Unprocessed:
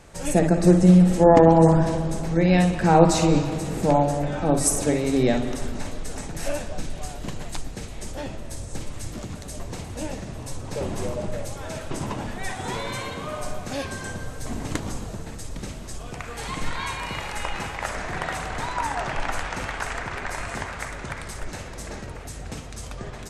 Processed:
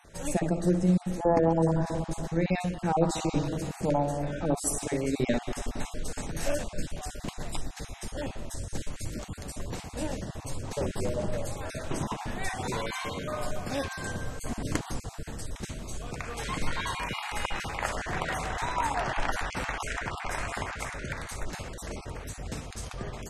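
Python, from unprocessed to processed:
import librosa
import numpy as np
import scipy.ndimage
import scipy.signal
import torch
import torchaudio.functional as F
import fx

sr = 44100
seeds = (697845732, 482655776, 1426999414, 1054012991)

y = fx.spec_dropout(x, sr, seeds[0], share_pct=20)
y = fx.rider(y, sr, range_db=4, speed_s=0.5)
y = F.gain(torch.from_numpy(y), -5.5).numpy()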